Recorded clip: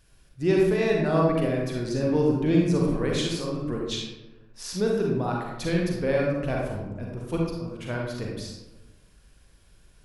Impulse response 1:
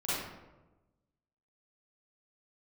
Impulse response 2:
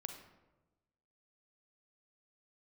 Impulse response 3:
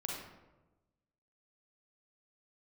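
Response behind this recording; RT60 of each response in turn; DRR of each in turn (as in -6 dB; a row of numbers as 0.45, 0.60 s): 3; 1.1, 1.1, 1.1 s; -12.0, 5.0, -2.5 dB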